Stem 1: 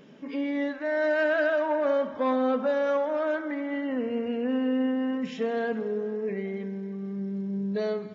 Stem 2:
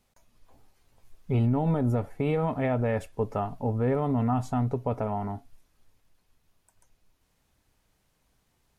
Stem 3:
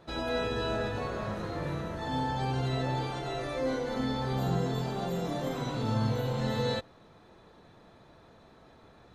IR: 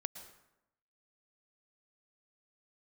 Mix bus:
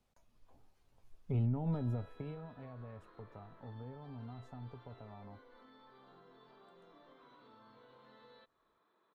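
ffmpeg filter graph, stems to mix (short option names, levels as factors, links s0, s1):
-filter_complex "[1:a]highshelf=f=5600:g=-9,acrossover=split=170[s0][s1];[s1]acompressor=threshold=0.0251:ratio=10[s2];[s0][s2]amix=inputs=2:normalize=0,volume=0.473,afade=t=out:st=1.75:d=0.74:silence=0.251189[s3];[2:a]adelay=1650,volume=0.178,highpass=430,equalizer=f=530:t=q:w=4:g=-6,equalizer=f=770:t=q:w=4:g=-9,equalizer=f=1100:t=q:w=4:g=5,equalizer=f=2700:t=q:w=4:g=-6,lowpass=f=3600:w=0.5412,lowpass=f=3600:w=1.3066,acompressor=threshold=0.00112:ratio=4,volume=1[s4];[s3][s4]amix=inputs=2:normalize=0,equalizer=f=2000:t=o:w=0.6:g=-3"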